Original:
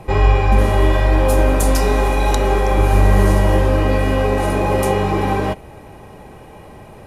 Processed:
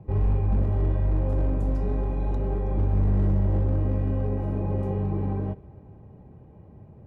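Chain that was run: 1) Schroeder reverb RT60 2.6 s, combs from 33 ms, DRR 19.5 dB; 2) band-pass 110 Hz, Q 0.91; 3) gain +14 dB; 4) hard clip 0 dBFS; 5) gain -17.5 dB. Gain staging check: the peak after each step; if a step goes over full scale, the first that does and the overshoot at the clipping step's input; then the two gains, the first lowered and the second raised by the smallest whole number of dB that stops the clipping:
-1.5, -7.5, +6.5, 0.0, -17.5 dBFS; step 3, 6.5 dB; step 3 +7 dB, step 5 -10.5 dB

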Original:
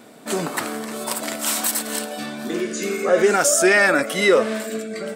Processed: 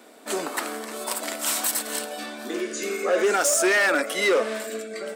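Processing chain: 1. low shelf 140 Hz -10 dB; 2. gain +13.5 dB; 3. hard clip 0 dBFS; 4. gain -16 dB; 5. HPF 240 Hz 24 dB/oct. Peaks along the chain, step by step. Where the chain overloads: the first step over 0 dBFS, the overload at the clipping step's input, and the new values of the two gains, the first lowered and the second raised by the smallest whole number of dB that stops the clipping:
-5.0, +8.5, 0.0, -16.0, -9.5 dBFS; step 2, 8.5 dB; step 2 +4.5 dB, step 4 -7 dB

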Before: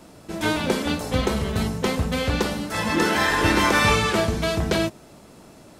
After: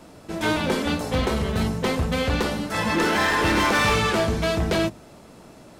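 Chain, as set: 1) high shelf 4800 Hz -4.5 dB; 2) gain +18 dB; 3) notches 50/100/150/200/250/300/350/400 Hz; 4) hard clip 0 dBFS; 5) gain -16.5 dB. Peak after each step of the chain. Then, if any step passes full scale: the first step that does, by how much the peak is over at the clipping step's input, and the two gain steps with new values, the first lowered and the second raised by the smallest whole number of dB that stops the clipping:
-8.0, +10.0, +9.5, 0.0, -16.5 dBFS; step 2, 9.5 dB; step 2 +8 dB, step 5 -6.5 dB

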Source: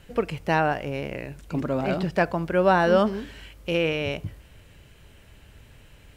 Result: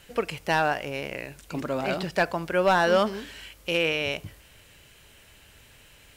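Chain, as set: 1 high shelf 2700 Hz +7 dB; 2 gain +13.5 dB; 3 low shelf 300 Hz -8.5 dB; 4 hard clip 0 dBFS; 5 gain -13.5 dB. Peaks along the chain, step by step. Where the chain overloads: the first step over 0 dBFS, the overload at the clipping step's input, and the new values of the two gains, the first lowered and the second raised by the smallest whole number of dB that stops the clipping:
-7.5, +6.0, +6.5, 0.0, -13.5 dBFS; step 2, 6.5 dB; step 2 +6.5 dB, step 5 -6.5 dB

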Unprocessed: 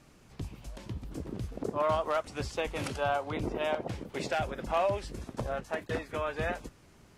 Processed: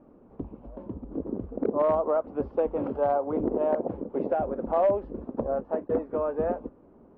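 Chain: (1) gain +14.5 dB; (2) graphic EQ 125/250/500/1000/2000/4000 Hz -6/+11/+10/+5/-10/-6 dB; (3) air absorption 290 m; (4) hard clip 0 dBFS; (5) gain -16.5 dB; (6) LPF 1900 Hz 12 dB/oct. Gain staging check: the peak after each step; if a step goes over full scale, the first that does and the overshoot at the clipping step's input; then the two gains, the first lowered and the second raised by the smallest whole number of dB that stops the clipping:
-2.5, +5.0, +4.0, 0.0, -16.5, -16.0 dBFS; step 2, 4.0 dB; step 1 +10.5 dB, step 5 -12.5 dB

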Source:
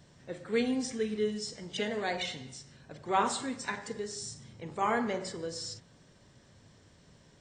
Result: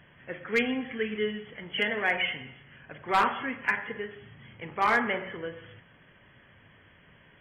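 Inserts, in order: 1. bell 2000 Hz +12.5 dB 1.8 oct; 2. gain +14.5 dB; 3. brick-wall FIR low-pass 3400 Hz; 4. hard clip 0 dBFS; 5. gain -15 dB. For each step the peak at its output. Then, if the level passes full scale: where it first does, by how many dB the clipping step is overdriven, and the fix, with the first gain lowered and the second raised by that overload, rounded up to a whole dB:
-7.0, +7.5, +7.5, 0.0, -15.0 dBFS; step 2, 7.5 dB; step 2 +6.5 dB, step 5 -7 dB

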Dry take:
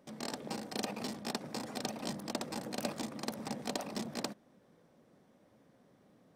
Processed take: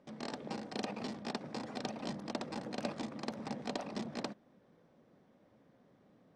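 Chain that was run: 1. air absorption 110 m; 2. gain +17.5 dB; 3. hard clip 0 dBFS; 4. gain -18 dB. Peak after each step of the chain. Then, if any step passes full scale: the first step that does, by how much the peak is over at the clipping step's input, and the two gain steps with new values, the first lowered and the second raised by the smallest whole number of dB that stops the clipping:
-21.5, -4.0, -4.0, -22.0 dBFS; no overload

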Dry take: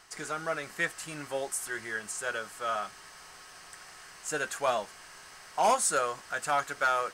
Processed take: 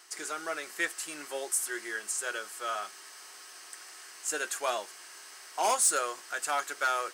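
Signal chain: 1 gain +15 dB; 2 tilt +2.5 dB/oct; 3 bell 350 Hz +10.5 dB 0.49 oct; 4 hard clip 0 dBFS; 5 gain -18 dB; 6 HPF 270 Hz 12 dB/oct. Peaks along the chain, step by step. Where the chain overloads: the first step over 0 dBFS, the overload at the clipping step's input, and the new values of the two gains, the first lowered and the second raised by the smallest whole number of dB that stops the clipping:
-3.0, +5.5, +5.5, 0.0, -18.0, -15.5 dBFS; step 2, 5.5 dB; step 1 +9 dB, step 5 -12 dB

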